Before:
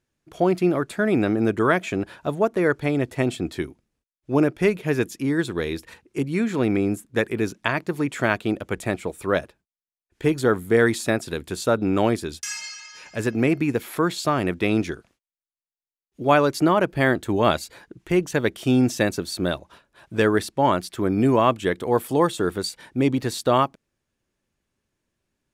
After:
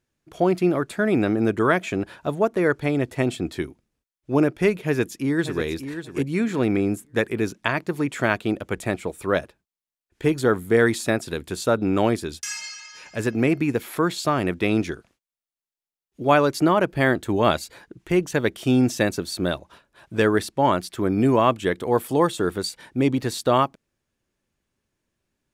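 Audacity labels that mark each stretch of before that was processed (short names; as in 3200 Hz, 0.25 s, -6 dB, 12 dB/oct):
4.790000	5.630000	echo throw 0.59 s, feedback 20%, level -10 dB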